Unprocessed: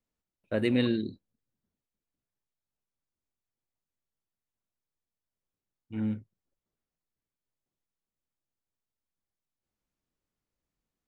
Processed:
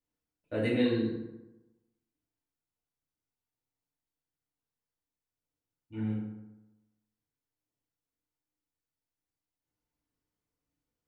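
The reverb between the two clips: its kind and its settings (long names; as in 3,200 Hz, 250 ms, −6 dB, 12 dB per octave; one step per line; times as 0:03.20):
feedback delay network reverb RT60 1 s, low-frequency decay 1×, high-frequency decay 0.55×, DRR −6 dB
level −8 dB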